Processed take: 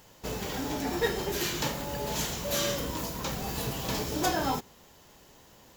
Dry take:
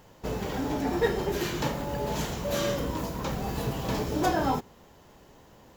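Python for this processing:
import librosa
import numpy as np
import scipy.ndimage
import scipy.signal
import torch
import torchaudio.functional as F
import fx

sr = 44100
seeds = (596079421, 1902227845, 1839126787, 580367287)

y = fx.high_shelf(x, sr, hz=2300.0, db=11.0)
y = y * 10.0 ** (-4.0 / 20.0)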